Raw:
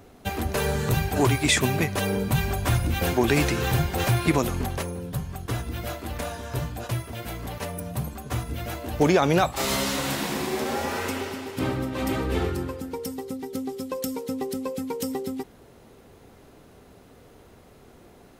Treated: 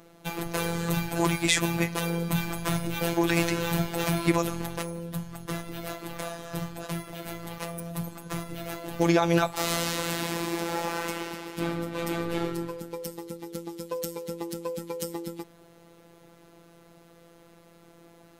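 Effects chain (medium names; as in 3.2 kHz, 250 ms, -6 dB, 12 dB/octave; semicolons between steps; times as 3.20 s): bass shelf 72 Hz -7 dB; robot voice 169 Hz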